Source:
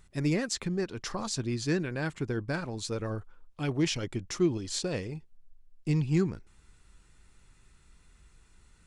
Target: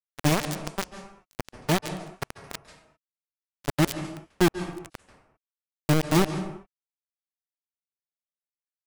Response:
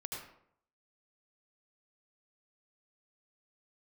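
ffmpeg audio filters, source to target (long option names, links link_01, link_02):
-filter_complex "[0:a]acrusher=bits=3:mix=0:aa=0.000001,agate=range=-33dB:threshold=-37dB:ratio=3:detection=peak,lowshelf=frequency=220:gain=4,asplit=2[link_01][link_02];[1:a]atrim=start_sample=2205,afade=type=out:start_time=0.26:duration=0.01,atrim=end_sample=11907,asetrate=22932,aresample=44100[link_03];[link_02][link_03]afir=irnorm=-1:irlink=0,volume=-10.5dB[link_04];[link_01][link_04]amix=inputs=2:normalize=0"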